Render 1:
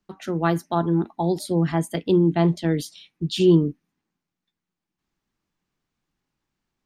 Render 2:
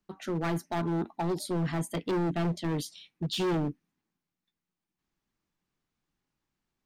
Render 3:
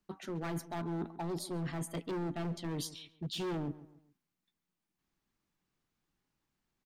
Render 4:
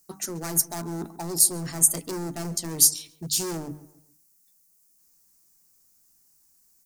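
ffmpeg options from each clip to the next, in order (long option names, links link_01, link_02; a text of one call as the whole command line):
ffmpeg -i in.wav -af "volume=22dB,asoftclip=hard,volume=-22dB,volume=-4dB" out.wav
ffmpeg -i in.wav -filter_complex "[0:a]areverse,acompressor=threshold=-36dB:ratio=6,areverse,asplit=2[link_01][link_02];[link_02]adelay=137,lowpass=frequency=2000:poles=1,volume=-16dB,asplit=2[link_03][link_04];[link_04]adelay=137,lowpass=frequency=2000:poles=1,volume=0.39,asplit=2[link_05][link_06];[link_06]adelay=137,lowpass=frequency=2000:poles=1,volume=0.39[link_07];[link_01][link_03][link_05][link_07]amix=inputs=4:normalize=0" out.wav
ffmpeg -i in.wav -af "bandreject=frequency=50:width_type=h:width=6,bandreject=frequency=100:width_type=h:width=6,bandreject=frequency=150:width_type=h:width=6,bandreject=frequency=200:width_type=h:width=6,bandreject=frequency=250:width_type=h:width=6,bandreject=frequency=300:width_type=h:width=6,aexciter=amount=14.8:drive=4.5:freq=5100,volume=4.5dB" out.wav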